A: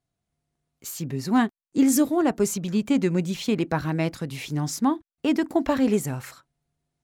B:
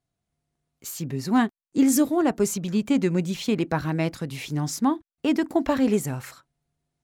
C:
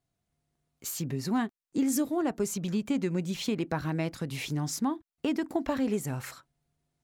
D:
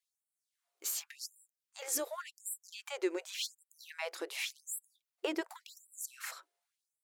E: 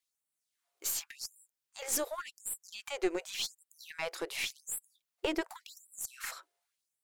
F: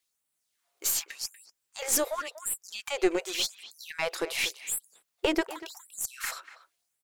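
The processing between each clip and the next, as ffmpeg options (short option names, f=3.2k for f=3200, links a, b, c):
-af anull
-af "acompressor=threshold=-31dB:ratio=2"
-af "afftfilt=real='re*gte(b*sr/1024,300*pow(7600/300,0.5+0.5*sin(2*PI*0.89*pts/sr)))':imag='im*gte(b*sr/1024,300*pow(7600/300,0.5+0.5*sin(2*PI*0.89*pts/sr)))':win_size=1024:overlap=0.75"
-af "aeval=exprs='(tanh(15.8*val(0)+0.5)-tanh(0.5))/15.8':c=same,volume=4.5dB"
-filter_complex "[0:a]asplit=2[a][b];[b]adelay=240,highpass=300,lowpass=3.4k,asoftclip=type=hard:threshold=-27.5dB,volume=-14dB[c];[a][c]amix=inputs=2:normalize=0,volume=6.5dB"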